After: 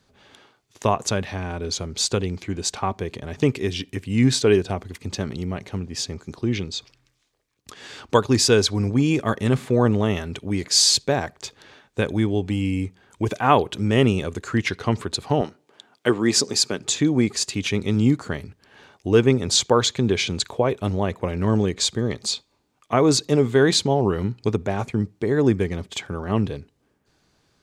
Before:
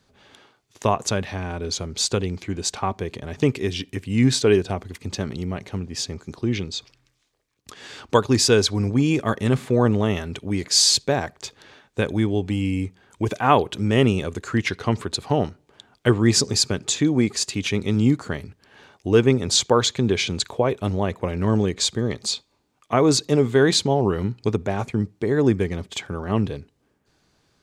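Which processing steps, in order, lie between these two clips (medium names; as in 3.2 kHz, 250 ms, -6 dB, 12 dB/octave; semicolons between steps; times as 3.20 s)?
15.41–16.79 s: high-pass 220 Hz 12 dB/octave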